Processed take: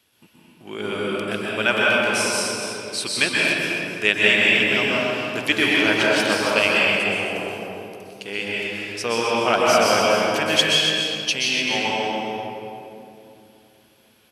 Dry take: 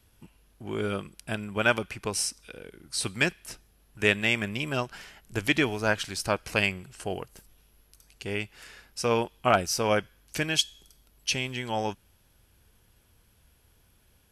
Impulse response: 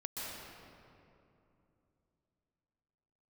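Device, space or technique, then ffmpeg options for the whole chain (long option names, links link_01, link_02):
stadium PA: -filter_complex "[0:a]highpass=210,equalizer=frequency=3100:width_type=o:width=1.4:gain=6.5,aecho=1:1:256.6|288.6:0.282|0.282[link_01];[1:a]atrim=start_sample=2205[link_02];[link_01][link_02]afir=irnorm=-1:irlink=0,volume=5dB"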